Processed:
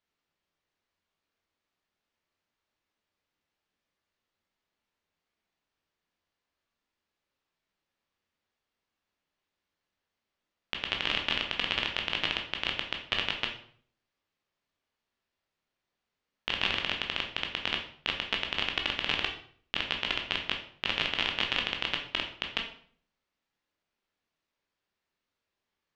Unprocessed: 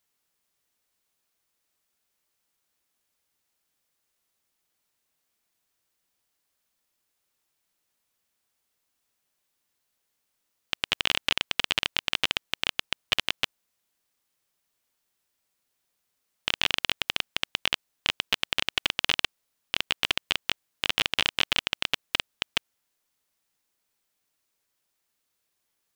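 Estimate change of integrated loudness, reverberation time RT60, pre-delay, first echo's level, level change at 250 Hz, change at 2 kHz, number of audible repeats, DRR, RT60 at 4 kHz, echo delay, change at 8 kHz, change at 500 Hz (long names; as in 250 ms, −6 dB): −3.5 dB, 0.55 s, 13 ms, no echo audible, +0.5 dB, −2.5 dB, no echo audible, 2.0 dB, 0.45 s, no echo audible, −14.0 dB, −0.5 dB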